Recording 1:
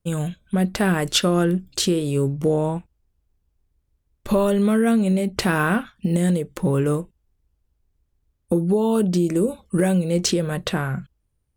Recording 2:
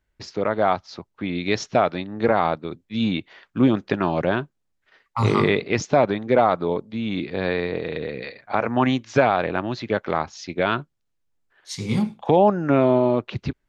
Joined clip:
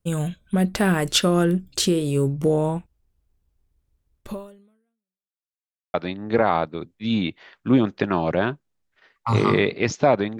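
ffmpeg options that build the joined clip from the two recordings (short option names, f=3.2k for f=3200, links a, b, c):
-filter_complex "[0:a]apad=whole_dur=10.39,atrim=end=10.39,asplit=2[a][b];[a]atrim=end=5.38,asetpts=PTS-STARTPTS,afade=t=out:st=4.19:d=1.19:c=exp[c];[b]atrim=start=5.38:end=5.94,asetpts=PTS-STARTPTS,volume=0[d];[1:a]atrim=start=1.84:end=6.29,asetpts=PTS-STARTPTS,afade=t=in:d=0.004:c=hsin[e];[c][d][e]concat=n=3:v=0:a=1"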